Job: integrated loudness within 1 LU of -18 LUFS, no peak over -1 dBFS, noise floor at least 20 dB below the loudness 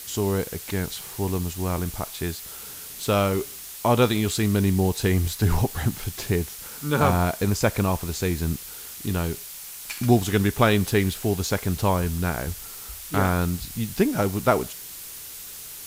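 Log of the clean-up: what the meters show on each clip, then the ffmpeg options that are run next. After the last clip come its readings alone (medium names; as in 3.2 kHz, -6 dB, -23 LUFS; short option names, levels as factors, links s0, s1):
noise floor -39 dBFS; noise floor target -45 dBFS; loudness -24.5 LUFS; peak level -5.0 dBFS; loudness target -18.0 LUFS
-> -af "afftdn=nr=6:nf=-39"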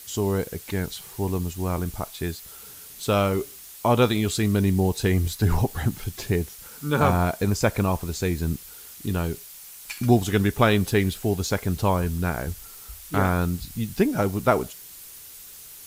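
noise floor -44 dBFS; noise floor target -45 dBFS
-> -af "afftdn=nr=6:nf=-44"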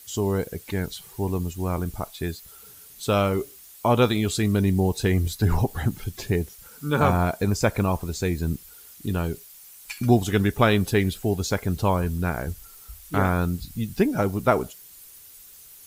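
noise floor -48 dBFS; loudness -24.5 LUFS; peak level -5.5 dBFS; loudness target -18.0 LUFS
-> -af "volume=2.11,alimiter=limit=0.891:level=0:latency=1"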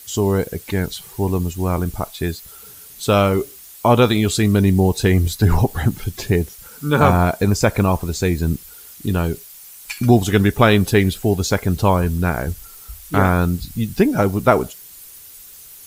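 loudness -18.5 LUFS; peak level -1.0 dBFS; noise floor -41 dBFS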